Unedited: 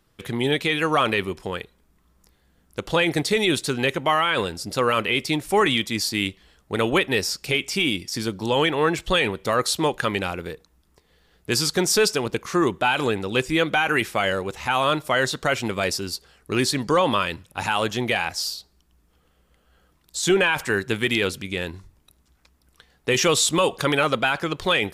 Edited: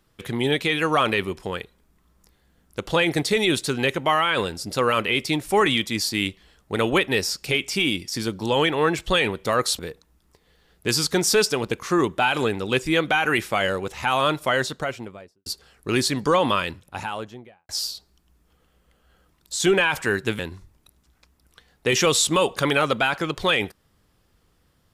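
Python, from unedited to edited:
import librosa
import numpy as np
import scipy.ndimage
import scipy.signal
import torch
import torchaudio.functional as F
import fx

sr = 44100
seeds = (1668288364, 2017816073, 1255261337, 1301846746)

y = fx.studio_fade_out(x, sr, start_s=15.06, length_s=1.03)
y = fx.studio_fade_out(y, sr, start_s=17.2, length_s=1.12)
y = fx.edit(y, sr, fx.cut(start_s=9.79, length_s=0.63),
    fx.cut(start_s=21.02, length_s=0.59), tone=tone)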